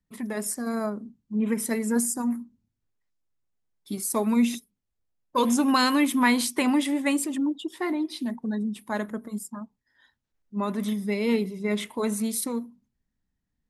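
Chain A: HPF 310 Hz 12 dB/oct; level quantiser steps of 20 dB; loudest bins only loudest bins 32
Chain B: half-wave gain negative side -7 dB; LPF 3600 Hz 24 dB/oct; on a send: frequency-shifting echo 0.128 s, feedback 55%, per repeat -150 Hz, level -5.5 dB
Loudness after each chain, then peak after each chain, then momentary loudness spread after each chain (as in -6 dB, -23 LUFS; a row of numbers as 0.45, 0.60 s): -40.0, -28.5 LUFS; -9.5, -9.5 dBFS; 12, 16 LU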